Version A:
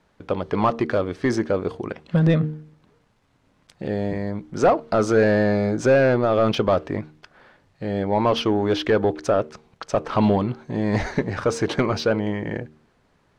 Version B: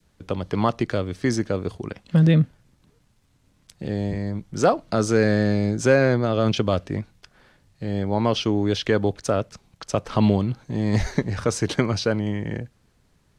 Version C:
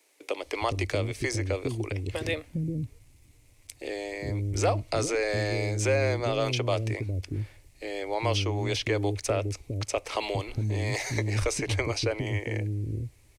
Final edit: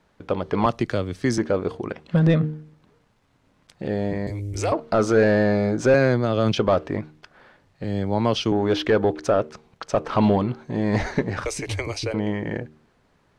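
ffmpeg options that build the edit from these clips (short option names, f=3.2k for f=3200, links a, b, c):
-filter_complex "[1:a]asplit=3[a][b][c];[2:a]asplit=2[d][e];[0:a]asplit=6[f][g][h][i][j][k];[f]atrim=end=0.662[l];[a]atrim=start=0.658:end=1.382[m];[g]atrim=start=1.378:end=4.272[n];[d]atrim=start=4.268:end=4.722[o];[h]atrim=start=4.718:end=5.942[p];[b]atrim=start=5.938:end=6.572[q];[i]atrim=start=6.568:end=7.842[r];[c]atrim=start=7.838:end=8.522[s];[j]atrim=start=8.518:end=11.452[t];[e]atrim=start=11.448:end=12.142[u];[k]atrim=start=12.138[v];[l][m]acrossfade=d=0.004:c1=hsin:c2=hsin[w];[w][n]acrossfade=d=0.004:c1=hsin:c2=hsin[x];[x][o]acrossfade=d=0.004:c1=hsin:c2=hsin[y];[y][p]acrossfade=d=0.004:c1=hsin:c2=hsin[z];[z][q]acrossfade=d=0.004:c1=hsin:c2=hsin[aa];[aa][r]acrossfade=d=0.004:c1=hsin:c2=hsin[ab];[ab][s]acrossfade=d=0.004:c1=hsin:c2=hsin[ac];[ac][t]acrossfade=d=0.004:c1=hsin:c2=hsin[ad];[ad][u]acrossfade=d=0.004:c1=hsin:c2=hsin[ae];[ae][v]acrossfade=d=0.004:c1=hsin:c2=hsin"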